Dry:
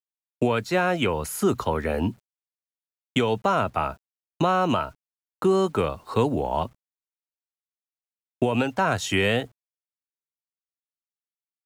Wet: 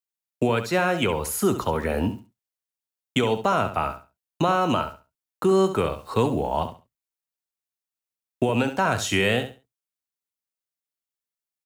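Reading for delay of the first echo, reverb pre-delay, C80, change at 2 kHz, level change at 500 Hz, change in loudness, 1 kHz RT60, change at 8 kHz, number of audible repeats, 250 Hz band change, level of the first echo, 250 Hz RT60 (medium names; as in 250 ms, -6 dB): 68 ms, no reverb, no reverb, +1.0 dB, +0.5 dB, +0.5 dB, no reverb, +3.5 dB, 2, +0.5 dB, -10.5 dB, no reverb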